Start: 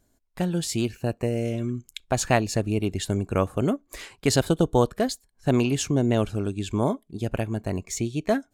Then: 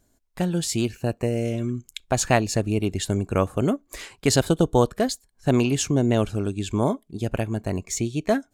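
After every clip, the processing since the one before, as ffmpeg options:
-af "equalizer=f=7.1k:w=1.5:g=2,volume=1.5dB"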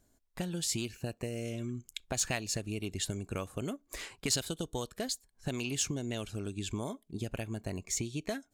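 -filter_complex "[0:a]acrossover=split=2200[a][b];[a]acompressor=threshold=-28dB:ratio=10[c];[c][b]amix=inputs=2:normalize=0,asoftclip=type=tanh:threshold=-14dB,volume=-4.5dB"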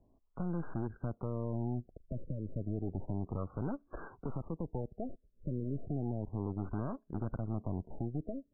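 -filter_complex "[0:a]acrossover=split=200|3900[a][b][c];[b]alimiter=level_in=6dB:limit=-24dB:level=0:latency=1:release=294,volume=-6dB[d];[a][d][c]amix=inputs=3:normalize=0,aeval=exprs='(tanh(100*val(0)+0.8)-tanh(0.8))/100':c=same,afftfilt=real='re*lt(b*sr/1024,630*pow(1700/630,0.5+0.5*sin(2*PI*0.32*pts/sr)))':imag='im*lt(b*sr/1024,630*pow(1700/630,0.5+0.5*sin(2*PI*0.32*pts/sr)))':win_size=1024:overlap=0.75,volume=8dB"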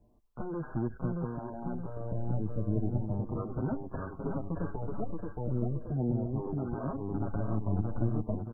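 -filter_complex "[0:a]asplit=2[a][b];[b]aecho=0:1:624|1248|1872|2496|3120:0.668|0.281|0.118|0.0495|0.0208[c];[a][c]amix=inputs=2:normalize=0,asplit=2[d][e];[e]adelay=6.4,afreqshift=0.37[f];[d][f]amix=inputs=2:normalize=1,volume=6.5dB"

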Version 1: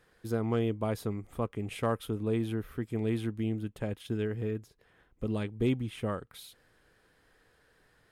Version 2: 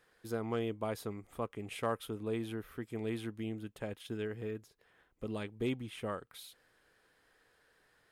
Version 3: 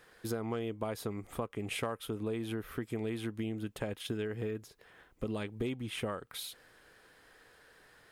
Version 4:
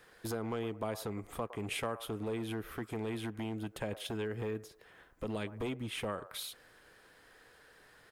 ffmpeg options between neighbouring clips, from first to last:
-af "lowshelf=f=270:g=-9.5,volume=-2dB"
-af "acompressor=threshold=-42dB:ratio=6,volume=9dB"
-filter_complex "[0:a]acrossover=split=470|1600[a][b][c];[a]aeval=exprs='0.02*(abs(mod(val(0)/0.02+3,4)-2)-1)':c=same[d];[b]aecho=1:1:111|222|333:0.316|0.098|0.0304[e];[d][e][c]amix=inputs=3:normalize=0"

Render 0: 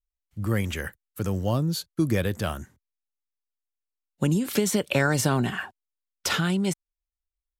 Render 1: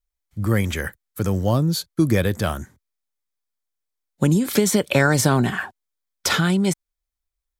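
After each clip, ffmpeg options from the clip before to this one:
-af "bandreject=f=2.8k:w=9.2,volume=5.5dB"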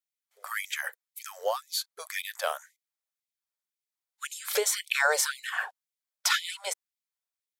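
-af "afftfilt=real='re*gte(b*sr/1024,410*pow(2000/410,0.5+0.5*sin(2*PI*1.9*pts/sr)))':imag='im*gte(b*sr/1024,410*pow(2000/410,0.5+0.5*sin(2*PI*1.9*pts/sr)))':win_size=1024:overlap=0.75,volume=-3.5dB"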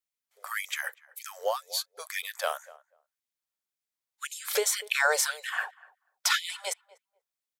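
-filter_complex "[0:a]asplit=2[a][b];[b]adelay=244,lowpass=f=970:p=1,volume=-18dB,asplit=2[c][d];[d]adelay=244,lowpass=f=970:p=1,volume=0.17[e];[a][c][e]amix=inputs=3:normalize=0"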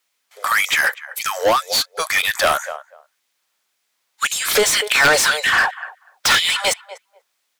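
-filter_complex "[0:a]aeval=exprs='(mod(5.31*val(0)+1,2)-1)/5.31':c=same,asplit=2[a][b];[b]highpass=f=720:p=1,volume=23dB,asoftclip=type=tanh:threshold=-14.5dB[c];[a][c]amix=inputs=2:normalize=0,lowpass=f=4.6k:p=1,volume=-6dB,volume=7.5dB"

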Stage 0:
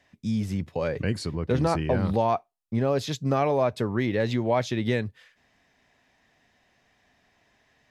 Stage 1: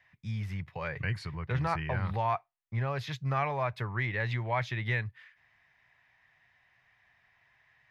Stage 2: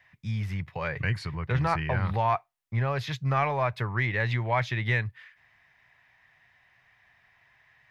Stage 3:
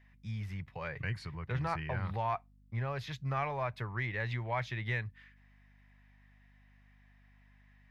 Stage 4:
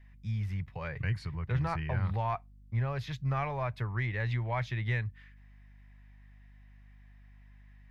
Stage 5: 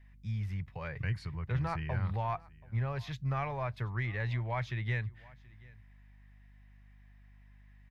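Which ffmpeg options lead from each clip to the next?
-af "equalizer=f=125:t=o:w=1:g=9,equalizer=f=250:t=o:w=1:g=-12,equalizer=f=500:t=o:w=1:g=-5,equalizer=f=1k:t=o:w=1:g=6,equalizer=f=2k:t=o:w=1:g=11,equalizer=f=8k:t=o:w=1:g=-9,volume=-8.5dB"
-af "aeval=exprs='0.158*(cos(1*acos(clip(val(0)/0.158,-1,1)))-cos(1*PI/2))+0.00178*(cos(6*acos(clip(val(0)/0.158,-1,1)))-cos(6*PI/2))':c=same,volume=4.5dB"
-af "aeval=exprs='val(0)+0.00224*(sin(2*PI*50*n/s)+sin(2*PI*2*50*n/s)/2+sin(2*PI*3*50*n/s)/3+sin(2*PI*4*50*n/s)/4+sin(2*PI*5*50*n/s)/5)':c=same,volume=-8.5dB"
-af "lowshelf=f=130:g=10"
-af "aecho=1:1:730:0.0668,volume=-2dB"

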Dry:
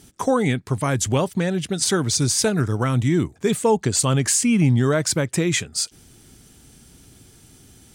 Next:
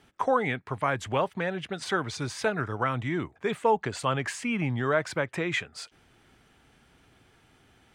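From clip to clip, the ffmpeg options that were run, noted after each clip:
-filter_complex "[0:a]acrossover=split=550 2900:gain=0.224 1 0.0708[a][b][c];[a][b][c]amix=inputs=3:normalize=0"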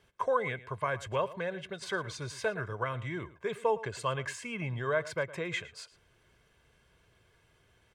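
-filter_complex "[0:a]aecho=1:1:1.9:0.62,asplit=2[a][b];[b]adelay=110.8,volume=-17dB,highshelf=f=4k:g=-2.49[c];[a][c]amix=inputs=2:normalize=0,volume=-7dB"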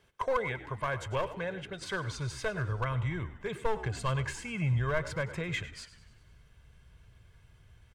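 -filter_complex "[0:a]aeval=exprs='clip(val(0),-1,0.0473)':c=same,asubboost=boost=5.5:cutoff=140,asplit=7[a][b][c][d][e][f][g];[b]adelay=98,afreqshift=-64,volume=-16dB[h];[c]adelay=196,afreqshift=-128,volume=-20.6dB[i];[d]adelay=294,afreqshift=-192,volume=-25.2dB[j];[e]adelay=392,afreqshift=-256,volume=-29.7dB[k];[f]adelay=490,afreqshift=-320,volume=-34.3dB[l];[g]adelay=588,afreqshift=-384,volume=-38.9dB[m];[a][h][i][j][k][l][m]amix=inputs=7:normalize=0"

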